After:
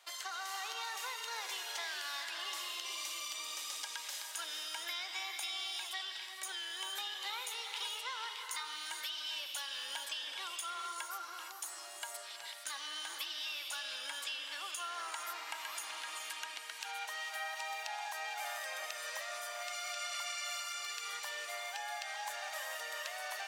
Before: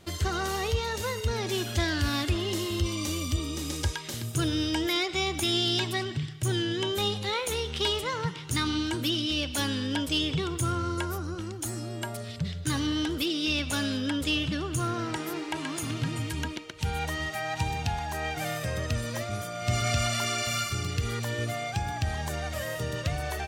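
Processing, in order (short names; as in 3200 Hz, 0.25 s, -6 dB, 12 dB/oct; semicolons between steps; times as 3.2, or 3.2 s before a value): HPF 770 Hz 24 dB/oct; compressor, threshold -35 dBFS, peak gain reduction 10.5 dB; non-linear reverb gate 0.49 s rising, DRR 3.5 dB; gain -4 dB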